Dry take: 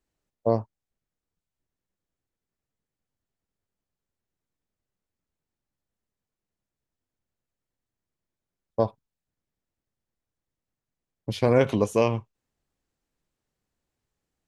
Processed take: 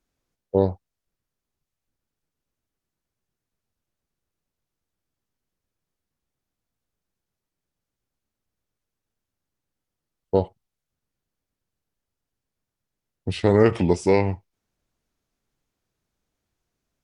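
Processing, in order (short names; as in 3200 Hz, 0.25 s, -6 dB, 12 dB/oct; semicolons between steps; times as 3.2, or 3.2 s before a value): varispeed -15%; gain +3 dB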